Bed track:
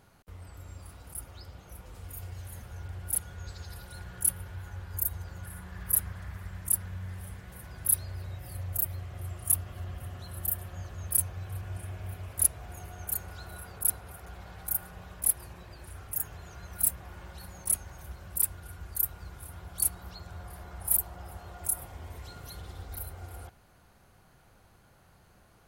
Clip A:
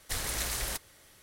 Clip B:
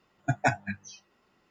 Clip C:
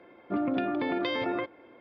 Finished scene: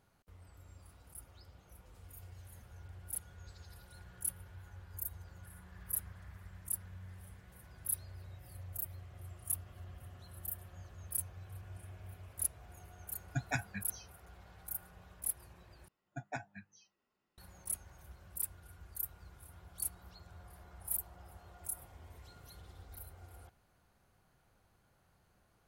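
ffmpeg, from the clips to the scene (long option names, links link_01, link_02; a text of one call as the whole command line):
ffmpeg -i bed.wav -i cue0.wav -i cue1.wav -filter_complex "[2:a]asplit=2[link_01][link_02];[0:a]volume=-11dB[link_03];[link_01]equalizer=frequency=570:width_type=o:width=2.5:gain=-11.5[link_04];[link_03]asplit=2[link_05][link_06];[link_05]atrim=end=15.884[link_07];[link_02]atrim=end=1.5,asetpts=PTS-STARTPTS,volume=-17dB[link_08];[link_06]atrim=start=17.376[link_09];[link_04]atrim=end=1.5,asetpts=PTS-STARTPTS,volume=-5dB,afade=type=in:duration=0.004:curve=hsin,afade=type=out:start_time=1.496:duration=0.004:curve=hsin,adelay=13070[link_10];[link_07][link_08]acrossfade=duration=0.004:curve1=hsin:curve2=hsin[link_11];[link_11][link_09]acrossfade=duration=0.004:curve1=hsin:curve2=hsin[link_12];[link_12][link_10]amix=inputs=2:normalize=0" out.wav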